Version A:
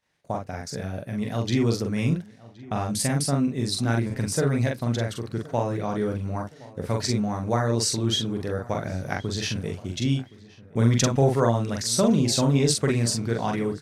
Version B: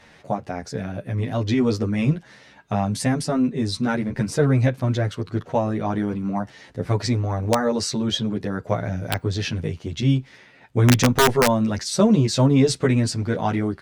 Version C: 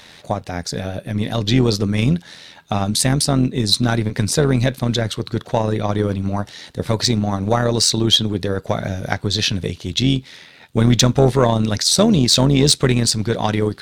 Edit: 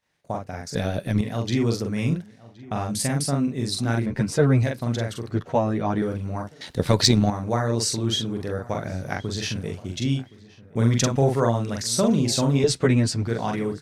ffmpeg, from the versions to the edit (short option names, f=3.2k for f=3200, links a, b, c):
-filter_complex "[2:a]asplit=2[a][b];[1:a]asplit=3[c][d][e];[0:a]asplit=6[f][g][h][i][j][k];[f]atrim=end=0.752[l];[a]atrim=start=0.748:end=1.212[m];[g]atrim=start=1.208:end=4.062[n];[c]atrim=start=4.058:end=4.632[o];[h]atrim=start=4.628:end=5.312[p];[d]atrim=start=5.308:end=6.022[q];[i]atrim=start=6.018:end=6.612[r];[b]atrim=start=6.608:end=7.302[s];[j]atrim=start=7.298:end=12.642[t];[e]atrim=start=12.638:end=13.272[u];[k]atrim=start=13.268[v];[l][m]acrossfade=d=0.004:c1=hsin:c2=hsin[w];[w][n]acrossfade=d=0.004:c1=hsin:c2=hsin[x];[x][o]acrossfade=d=0.004:c1=hsin:c2=hsin[y];[y][p]acrossfade=d=0.004:c1=hsin:c2=hsin[z];[z][q]acrossfade=d=0.004:c1=hsin:c2=hsin[aa];[aa][r]acrossfade=d=0.004:c1=hsin:c2=hsin[ab];[ab][s]acrossfade=d=0.004:c1=hsin:c2=hsin[ac];[ac][t]acrossfade=d=0.004:c1=hsin:c2=hsin[ad];[ad][u]acrossfade=d=0.004:c1=hsin:c2=hsin[ae];[ae][v]acrossfade=d=0.004:c1=hsin:c2=hsin"